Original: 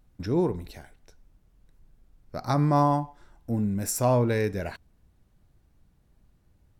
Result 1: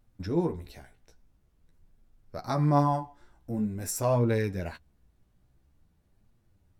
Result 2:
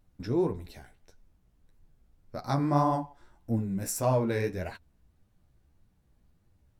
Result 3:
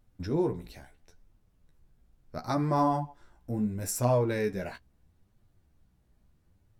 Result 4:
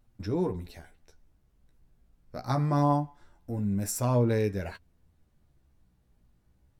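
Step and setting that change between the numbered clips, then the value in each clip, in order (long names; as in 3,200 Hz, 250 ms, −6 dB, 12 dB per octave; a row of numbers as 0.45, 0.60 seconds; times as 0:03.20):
flanger, speed: 0.47, 1.7, 0.74, 0.24 Hertz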